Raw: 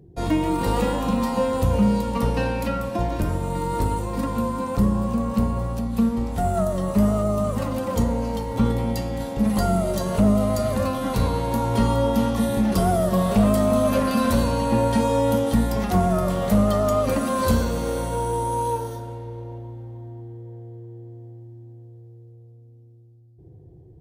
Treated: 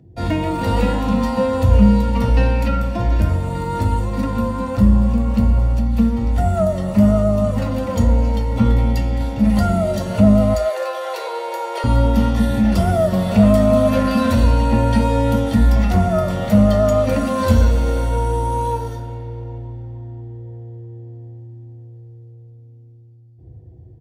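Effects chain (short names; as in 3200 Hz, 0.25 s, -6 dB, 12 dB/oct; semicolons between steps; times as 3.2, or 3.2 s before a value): 10.54–11.84 Chebyshev high-pass 340 Hz, order 10; speakerphone echo 0.15 s, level -21 dB; reverb RT60 0.10 s, pre-delay 3 ms, DRR 7 dB; gain -4 dB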